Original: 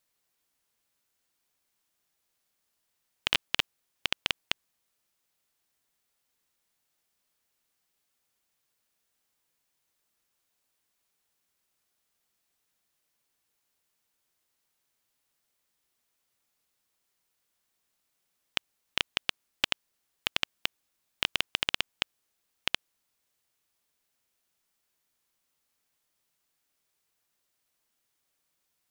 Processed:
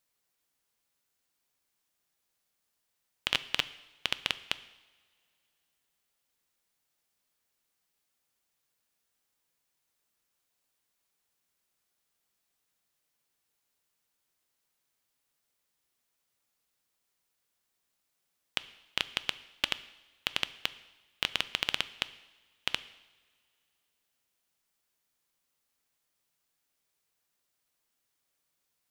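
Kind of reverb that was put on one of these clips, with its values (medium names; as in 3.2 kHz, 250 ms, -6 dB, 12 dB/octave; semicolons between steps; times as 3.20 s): two-slope reverb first 0.93 s, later 3.1 s, from -20 dB, DRR 14 dB; trim -2 dB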